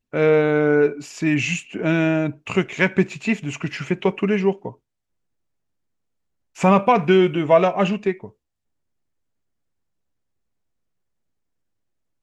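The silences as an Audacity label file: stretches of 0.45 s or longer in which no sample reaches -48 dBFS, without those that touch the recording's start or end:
4.750000	6.550000	silence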